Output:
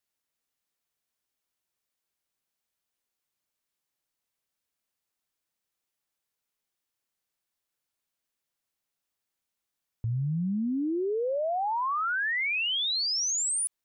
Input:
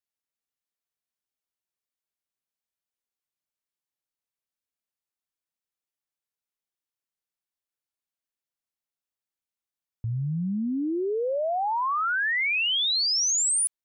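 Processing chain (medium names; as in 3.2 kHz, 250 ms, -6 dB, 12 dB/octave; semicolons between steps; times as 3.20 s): peak limiter -32 dBFS, peak gain reduction 11.5 dB; trim +6.5 dB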